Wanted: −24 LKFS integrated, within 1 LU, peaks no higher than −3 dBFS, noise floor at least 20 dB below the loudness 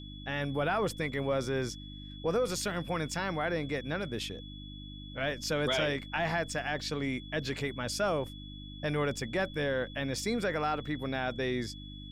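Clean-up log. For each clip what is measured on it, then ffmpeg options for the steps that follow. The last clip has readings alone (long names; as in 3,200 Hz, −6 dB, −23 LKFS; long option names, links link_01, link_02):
mains hum 50 Hz; hum harmonics up to 300 Hz; level of the hum −43 dBFS; interfering tone 3,400 Hz; level of the tone −49 dBFS; integrated loudness −33.0 LKFS; sample peak −19.0 dBFS; target loudness −24.0 LKFS
→ -af "bandreject=frequency=50:width_type=h:width=4,bandreject=frequency=100:width_type=h:width=4,bandreject=frequency=150:width_type=h:width=4,bandreject=frequency=200:width_type=h:width=4,bandreject=frequency=250:width_type=h:width=4,bandreject=frequency=300:width_type=h:width=4"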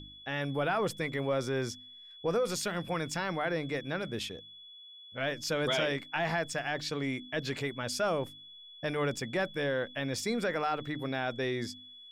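mains hum none found; interfering tone 3,400 Hz; level of the tone −49 dBFS
→ -af "bandreject=frequency=3400:width=30"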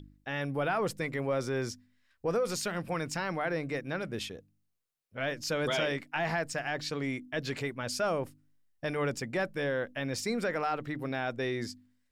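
interfering tone none found; integrated loudness −33.5 LKFS; sample peak −20.0 dBFS; target loudness −24.0 LKFS
→ -af "volume=9.5dB"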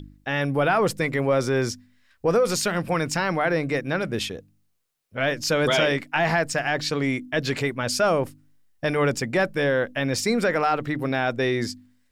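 integrated loudness −24.0 LKFS; sample peak −10.5 dBFS; background noise floor −65 dBFS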